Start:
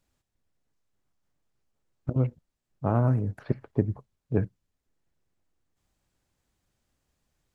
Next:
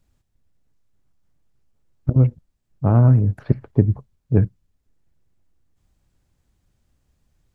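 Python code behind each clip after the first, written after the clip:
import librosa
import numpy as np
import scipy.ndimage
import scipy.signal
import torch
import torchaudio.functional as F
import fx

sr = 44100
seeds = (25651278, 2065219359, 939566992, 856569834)

y = fx.low_shelf(x, sr, hz=210.0, db=11.5)
y = y * 10.0 ** (2.5 / 20.0)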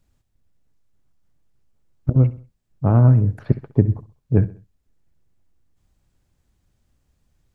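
y = fx.echo_feedback(x, sr, ms=65, feedback_pct=41, wet_db=-17.5)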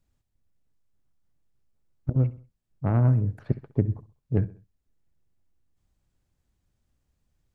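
y = fx.tracing_dist(x, sr, depth_ms=0.097)
y = y * 10.0 ** (-7.5 / 20.0)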